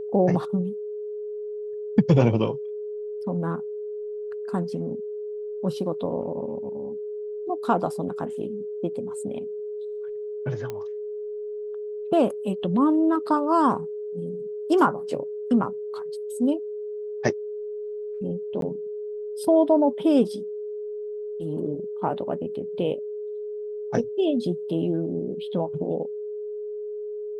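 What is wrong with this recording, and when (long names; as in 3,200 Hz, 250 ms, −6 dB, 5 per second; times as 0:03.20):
whistle 420 Hz −30 dBFS
0:10.70: click −19 dBFS
0:18.61–0:18.62: drop-out 12 ms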